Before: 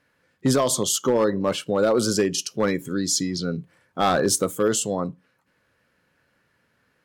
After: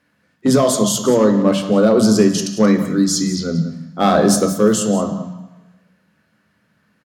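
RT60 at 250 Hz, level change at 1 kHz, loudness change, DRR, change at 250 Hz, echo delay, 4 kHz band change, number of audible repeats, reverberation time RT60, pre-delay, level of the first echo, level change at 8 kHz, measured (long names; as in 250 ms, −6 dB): 1.0 s, +5.0 dB, +7.0 dB, 4.5 dB, +11.0 dB, 181 ms, +3.5 dB, 1, 1.1 s, 3 ms, −14.0 dB, +3.0 dB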